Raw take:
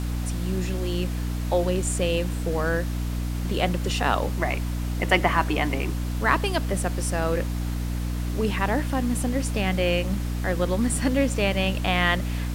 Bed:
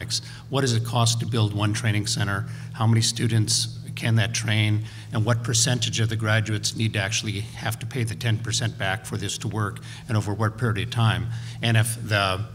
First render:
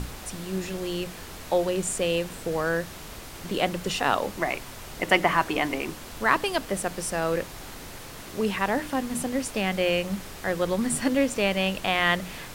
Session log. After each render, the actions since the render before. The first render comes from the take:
mains-hum notches 60/120/180/240/300 Hz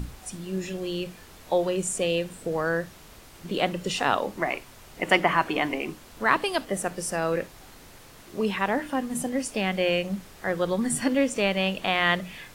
noise reduction from a noise print 8 dB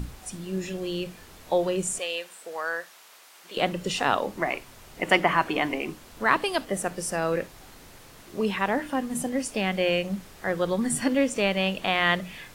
0:01.99–0:03.57: high-pass filter 790 Hz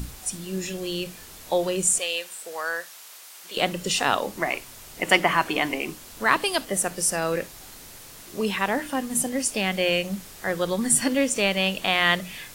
high-shelf EQ 3,700 Hz +11 dB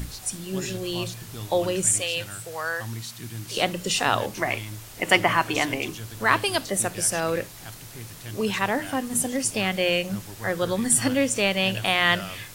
mix in bed −15 dB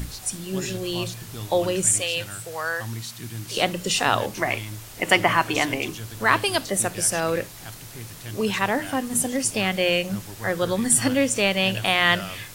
level +1.5 dB
brickwall limiter −3 dBFS, peak gain reduction 2 dB

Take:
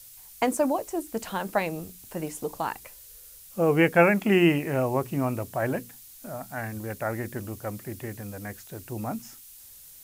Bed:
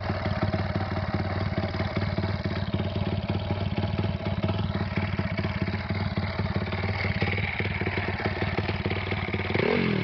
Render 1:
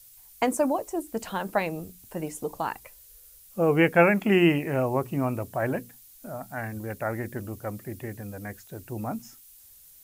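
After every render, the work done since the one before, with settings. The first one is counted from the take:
broadband denoise 6 dB, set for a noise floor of −49 dBFS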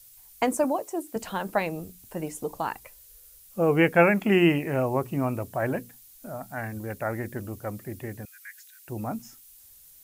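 0:00.64–0:01.16: Bessel high-pass filter 180 Hz
0:08.25–0:08.88: Butterworth high-pass 1,500 Hz 48 dB per octave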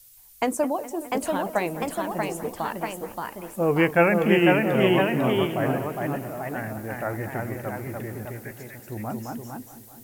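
delay with pitch and tempo change per echo 722 ms, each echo +1 semitone, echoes 2
bucket-brigade delay 208 ms, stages 4,096, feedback 75%, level −16.5 dB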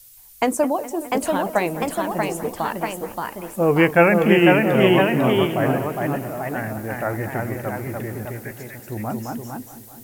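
level +4.5 dB
brickwall limiter −2 dBFS, peak gain reduction 1.5 dB

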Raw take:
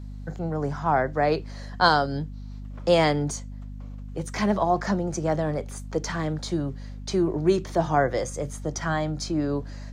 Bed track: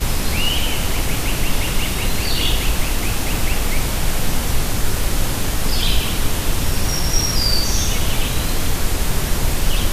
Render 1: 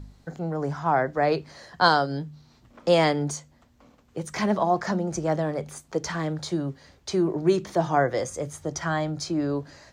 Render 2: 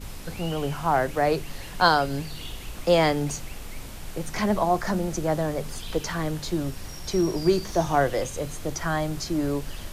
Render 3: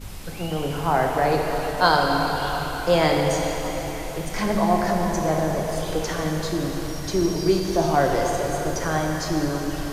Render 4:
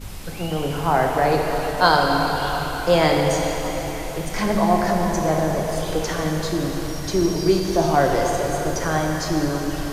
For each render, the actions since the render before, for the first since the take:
hum removal 50 Hz, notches 5
mix in bed track −19 dB
echo through a band-pass that steps 317 ms, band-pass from 740 Hz, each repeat 0.7 octaves, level −10.5 dB; dense smooth reverb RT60 4.3 s, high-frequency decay 0.9×, DRR 0 dB
level +2 dB

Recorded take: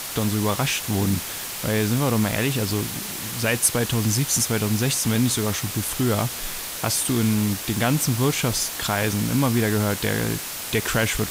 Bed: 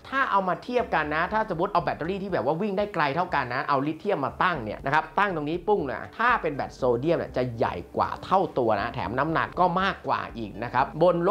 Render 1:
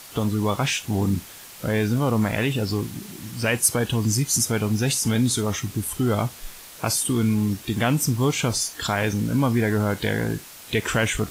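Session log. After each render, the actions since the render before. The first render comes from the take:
noise reduction from a noise print 11 dB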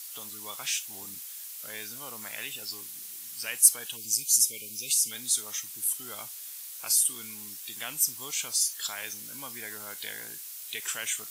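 0:03.97–0:05.11: time-frequency box erased 590–2,100 Hz
first difference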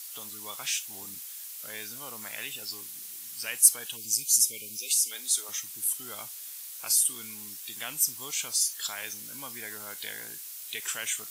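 0:04.77–0:05.49: high-pass filter 310 Hz 24 dB per octave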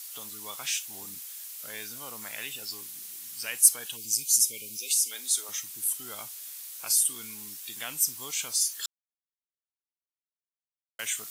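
0:08.86–0:10.99: silence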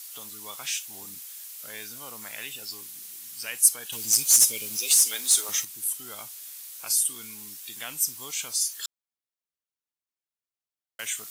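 0:03.92–0:05.65: leveller curve on the samples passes 2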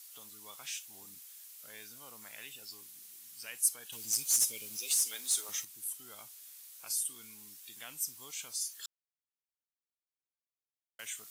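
level −10.5 dB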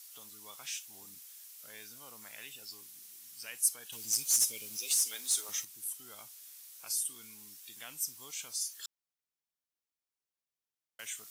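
parametric band 5,600 Hz +2.5 dB 0.29 octaves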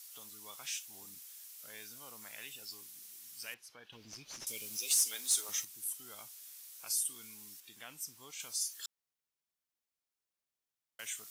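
0:03.54–0:04.47: high-frequency loss of the air 300 metres
0:07.60–0:08.40: high-shelf EQ 4,000 Hz −9 dB

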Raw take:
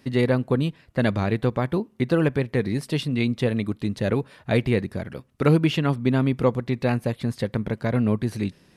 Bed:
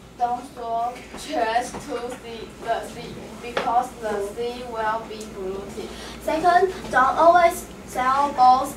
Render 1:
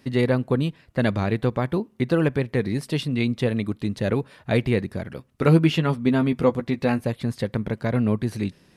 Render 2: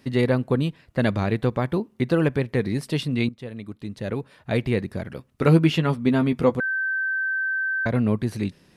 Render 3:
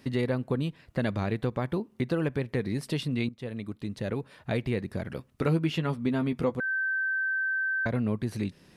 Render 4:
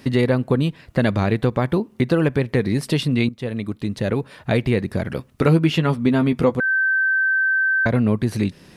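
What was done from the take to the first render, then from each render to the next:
0:05.42–0:07.01: double-tracking delay 12 ms −7 dB
0:03.29–0:05.04: fade in, from −17 dB; 0:06.60–0:07.86: beep over 1,550 Hz −22 dBFS
downward compressor 2 to 1, threshold −30 dBFS, peak gain reduction 10.5 dB
level +10 dB

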